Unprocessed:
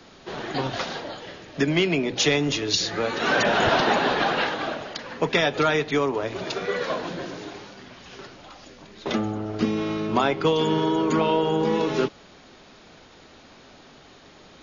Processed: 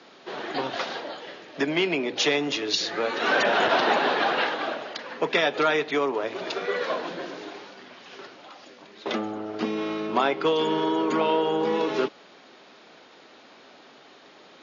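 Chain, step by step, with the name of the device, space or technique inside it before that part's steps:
public-address speaker with an overloaded transformer (saturating transformer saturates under 430 Hz; band-pass filter 290–5,100 Hz)

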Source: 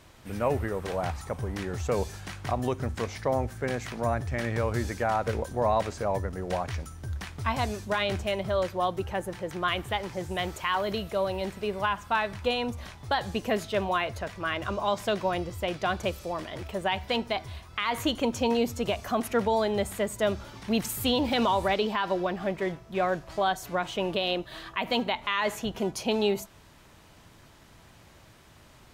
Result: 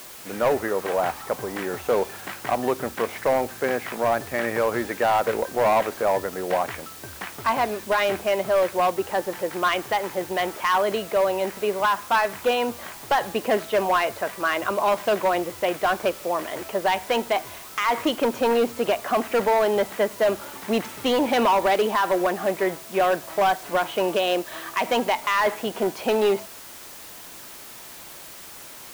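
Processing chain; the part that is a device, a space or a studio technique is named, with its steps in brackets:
aircraft radio (band-pass filter 320–2,400 Hz; hard clipping −23.5 dBFS, distortion −14 dB; white noise bed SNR 18 dB)
level +8.5 dB

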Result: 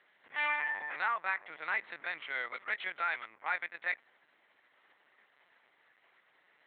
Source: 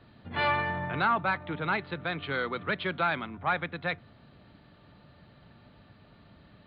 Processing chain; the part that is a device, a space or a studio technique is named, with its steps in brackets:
0:01.68–0:02.21: parametric band 65 Hz +12 dB 1.8 octaves
talking toy (linear-prediction vocoder at 8 kHz pitch kept; high-pass filter 690 Hz 12 dB per octave; parametric band 2,000 Hz +11.5 dB 0.46 octaves)
level −7.5 dB

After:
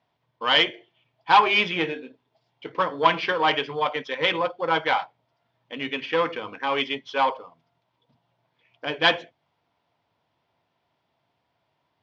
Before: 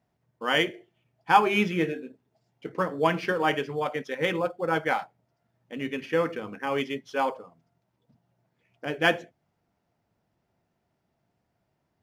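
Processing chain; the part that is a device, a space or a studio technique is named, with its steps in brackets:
guitar amplifier (tube saturation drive 16 dB, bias 0.3; bass and treble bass −4 dB, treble +13 dB; loudspeaker in its box 82–4,000 Hz, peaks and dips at 200 Hz −8 dB, 370 Hz −4 dB, 1,000 Hz +8 dB, 2,300 Hz +3 dB, 3,300 Hz +6 dB)
level +3.5 dB

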